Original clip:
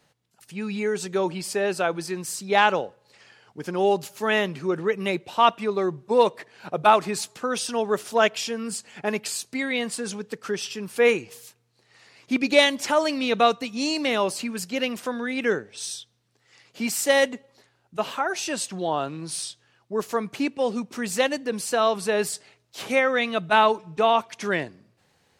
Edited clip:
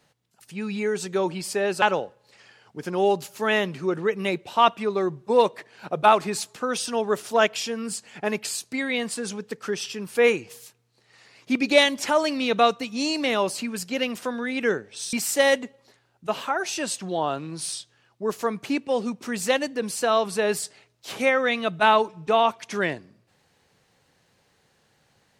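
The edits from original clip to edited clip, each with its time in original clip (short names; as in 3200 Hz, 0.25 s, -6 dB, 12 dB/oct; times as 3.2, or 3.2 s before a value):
1.82–2.63 cut
15.94–16.83 cut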